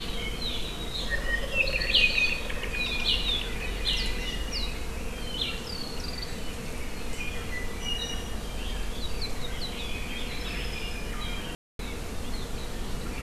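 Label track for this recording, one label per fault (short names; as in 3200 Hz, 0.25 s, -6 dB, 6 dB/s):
11.550000	11.790000	gap 0.242 s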